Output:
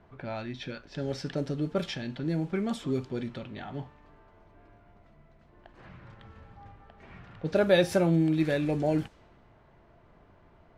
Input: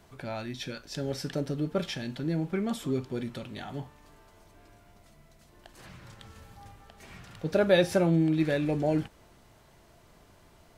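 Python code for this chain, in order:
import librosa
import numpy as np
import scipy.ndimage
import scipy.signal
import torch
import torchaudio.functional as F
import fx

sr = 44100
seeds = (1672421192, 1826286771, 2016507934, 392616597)

y = fx.env_lowpass(x, sr, base_hz=1800.0, full_db=-23.5)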